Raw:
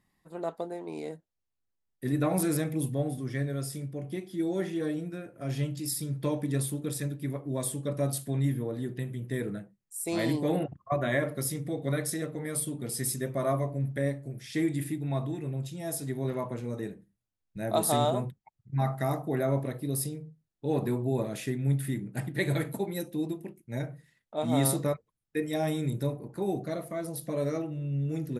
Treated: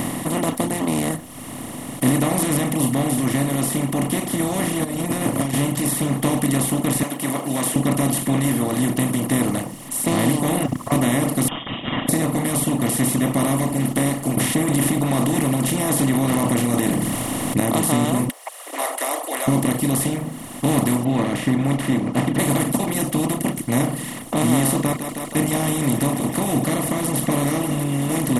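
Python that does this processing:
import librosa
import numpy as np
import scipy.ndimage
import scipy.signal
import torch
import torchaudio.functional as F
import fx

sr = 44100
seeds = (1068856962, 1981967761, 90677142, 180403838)

y = fx.over_compress(x, sr, threshold_db=-43.0, ratio=-1.0, at=(4.83, 5.53), fade=0.02)
y = fx.highpass(y, sr, hz=780.0, slope=12, at=(7.03, 7.76))
y = fx.freq_invert(y, sr, carrier_hz=3400, at=(11.48, 12.09))
y = fx.env_flatten(y, sr, amount_pct=70, at=(14.37, 17.6))
y = fx.steep_highpass(y, sr, hz=570.0, slope=72, at=(18.29, 19.48))
y = fx.lowpass(y, sr, hz=2700.0, slope=24, at=(21.03, 22.38), fade=0.02)
y = fx.echo_thinned(y, sr, ms=159, feedback_pct=49, hz=420.0, wet_db=-17, at=(24.77, 27.84))
y = fx.bin_compress(y, sr, power=0.2)
y = fx.dereverb_blind(y, sr, rt60_s=1.1)
y = fx.graphic_eq_31(y, sr, hz=(250, 400, 630, 1600, 3150, 5000), db=(8, -8, -6, -9, -10, -11))
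y = y * librosa.db_to_amplitude(2.5)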